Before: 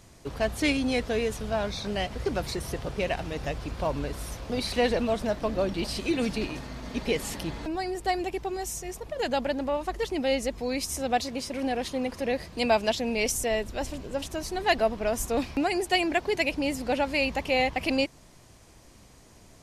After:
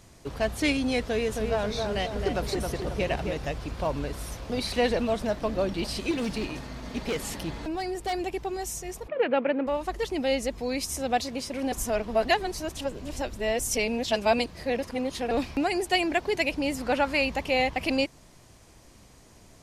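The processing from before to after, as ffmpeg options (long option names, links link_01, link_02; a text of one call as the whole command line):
ffmpeg -i in.wav -filter_complex "[0:a]asettb=1/sr,asplit=3[link_01][link_02][link_03];[link_01]atrim=end=1.014[link_04];[link_02]atrim=start=1.01:end=3.37,asetpts=PTS-STARTPTS,afade=type=in:duration=0.004:curve=qsin,afade=type=out:start_time=2.356:duration=0.004:curve=qsin,asplit=2[link_05][link_06];[link_06]adelay=268,lowpass=frequency=1800:poles=1,volume=-3.5dB,asplit=2[link_07][link_08];[link_08]adelay=268,lowpass=frequency=1800:poles=1,volume=0.49,asplit=2[link_09][link_10];[link_10]adelay=268,lowpass=frequency=1800:poles=1,volume=0.49,asplit=2[link_11][link_12];[link_12]adelay=268,lowpass=frequency=1800:poles=1,volume=0.49,asplit=2[link_13][link_14];[link_14]adelay=268,lowpass=frequency=1800:poles=1,volume=0.49,asplit=2[link_15][link_16];[link_16]adelay=268,lowpass=frequency=1800:poles=1,volume=0.49[link_17];[link_05][link_07][link_09][link_11][link_13][link_15][link_17]amix=inputs=7:normalize=0,atrim=end_sample=104076[link_18];[link_03]atrim=start=3.366[link_19];[link_04][link_18]acrossfade=duration=0.004:curve1=hsin:curve2=qsin[link_20];[link_20][link_19]acrossfade=duration=0.004:curve1=qsin:curve2=hsin,asettb=1/sr,asplit=3[link_21][link_22][link_23];[link_21]atrim=end=6.114[link_24];[link_22]atrim=start=6.11:end=8.13,asetpts=PTS-STARTPTS,afade=type=in:duration=0.004:curve=qsin,afade=type=out:start_time=2.016:duration=0.004:curve=qsin,asoftclip=type=hard:threshold=-25dB[link_25];[link_23]atrim=start=8.126[link_26];[link_24][link_25]acrossfade=duration=0.004:curve1=hsin:curve2=qsin[link_27];[link_27][link_26]acrossfade=duration=0.004:curve1=qsin:curve2=hsin,asplit=3[link_28][link_29][link_30];[link_28]afade=type=out:start_time=9.07:duration=0.02[link_31];[link_29]highpass=frequency=150:width=0.5412,highpass=frequency=150:width=1.3066,equalizer=frequency=150:width_type=q:width=4:gain=-5,equalizer=frequency=290:width_type=q:width=4:gain=4,equalizer=frequency=490:width_type=q:width=4:gain=8,equalizer=frequency=720:width_type=q:width=4:gain=-3,equalizer=frequency=1300:width_type=q:width=4:gain=6,equalizer=frequency=2400:width_type=q:width=4:gain=8,lowpass=frequency=2700:width=0.5412,lowpass=frequency=2700:width=1.3066,afade=type=in:start_time=9.07:duration=0.02,afade=type=out:start_time=9.66:duration=0.02[link_32];[link_30]afade=type=in:start_time=9.66:duration=0.02[link_33];[link_31][link_32][link_33]amix=inputs=3:normalize=0,asettb=1/sr,asplit=3[link_34][link_35][link_36];[link_34]atrim=end=16.774[link_37];[link_35]atrim=start=16.77:end=17.22,asetpts=PTS-STARTPTS,afade=type=in:duration=0.004:curve=qsin,afade=type=out:start_time=0.446:duration=0.004:curve=qsin,equalizer=frequency=1300:width_type=o:width=0.91:gain=7.5[link_38];[link_36]atrim=start=17.216[link_39];[link_37][link_38]acrossfade=duration=0.004:curve1=hsin:curve2=qsin[link_40];[link_40][link_39]acrossfade=duration=0.004:curve1=qsin:curve2=hsin,asplit=3[link_41][link_42][link_43];[link_41]atrim=end=11.722[link_44];[link_42]atrim=start=11.718:end=15.312,asetpts=PTS-STARTPTS,areverse[link_45];[link_43]atrim=start=15.308[link_46];[link_44][link_45]acrossfade=duration=0.004:curve1=hsin:curve2=hsin[link_47];[link_47][link_46]acrossfade=duration=0.004:curve1=hsin:curve2=hsin" out.wav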